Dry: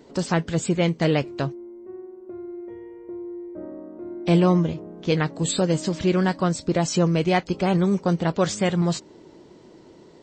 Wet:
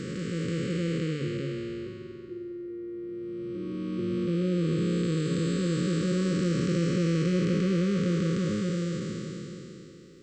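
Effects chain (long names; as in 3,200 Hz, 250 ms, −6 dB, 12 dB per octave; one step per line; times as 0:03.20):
spectrum smeared in time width 1,280 ms
hum removal 74.29 Hz, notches 12
brick-wall band-stop 550–1,100 Hz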